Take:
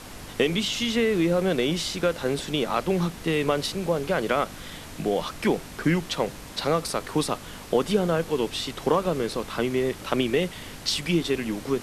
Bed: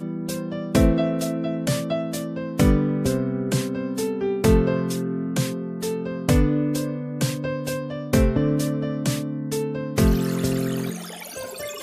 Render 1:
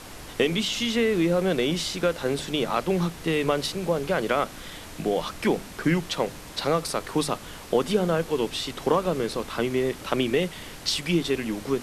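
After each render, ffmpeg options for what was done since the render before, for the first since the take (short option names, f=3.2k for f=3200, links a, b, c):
-af "bandreject=f=50:t=h:w=4,bandreject=f=100:t=h:w=4,bandreject=f=150:t=h:w=4,bandreject=f=200:t=h:w=4,bandreject=f=250:t=h:w=4"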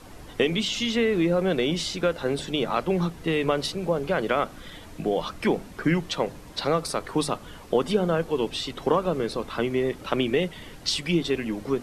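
-af "afftdn=nr=9:nf=-41"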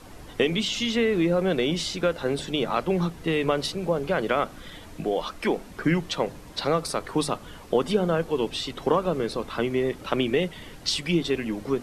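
-filter_complex "[0:a]asettb=1/sr,asplit=3[a][b][c];[a]atrim=end=5.054[d];[b]atrim=start=5.05:end=5.68,asetpts=PTS-STARTPTS,afade=t=in:d=0.004:c=qsin,afade=t=out:st=0.626:d=0.004:c=qsin,equalizer=f=120:w=1.5:g=-14.5[e];[c]atrim=start=5.676[f];[d][e]acrossfade=d=0.004:c1=hsin:c2=qsin[g];[g][f]acrossfade=d=0.004:c1=qsin:c2=hsin"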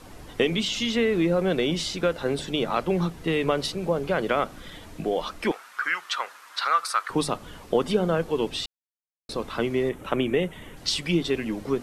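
-filter_complex "[0:a]asettb=1/sr,asplit=3[a][b][c];[a]atrim=end=5.514[d];[b]atrim=start=5.51:end=7.1,asetpts=PTS-STARTPTS,afade=t=in:d=0.004:c=qsin,afade=t=out:st=1.586:d=0.004:c=qsin,highpass=f=1.3k:t=q:w=3.5[e];[c]atrim=start=7.096[f];[d][e]acrossfade=d=0.004:c1=hsin:c2=qsin[g];[g][f]acrossfade=d=0.004:c1=qsin:c2=hsin,asettb=1/sr,asplit=3[h][i][j];[h]atrim=end=9.894[k];[i]atrim=start=9.89:end=10.77,asetpts=PTS-STARTPTS,afade=t=in:d=0.004:c=qsin,afade=t=out:st=0.876:d=0.004:c=qsin,equalizer=f=4.7k:w=2.2:g=-14[l];[j]atrim=start=10.766[m];[k][l]acrossfade=d=0.004:c1=hsin:c2=qsin[n];[n][m]acrossfade=d=0.004:c1=qsin:c2=hsin,asplit=3[o][p][q];[o]atrim=end=8.66,asetpts=PTS-STARTPTS,afade=t=out:st=8.656:d=0.004:c=hsin[r];[p]atrim=start=8.66:end=9.29,asetpts=PTS-STARTPTS,volume=0[s];[q]atrim=start=9.29,asetpts=PTS-STARTPTS,afade=t=in:d=0.004:c=hsin[t];[r][s][t]concat=n=3:v=0:a=1"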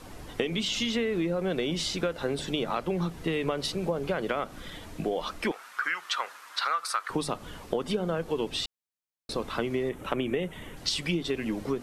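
-af "acompressor=threshold=-25dB:ratio=6"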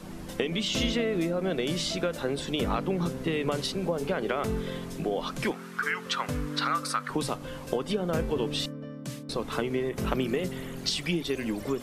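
-filter_complex "[1:a]volume=-14dB[a];[0:a][a]amix=inputs=2:normalize=0"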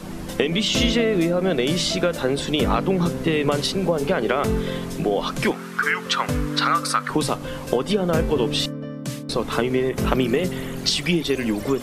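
-af "volume=8dB"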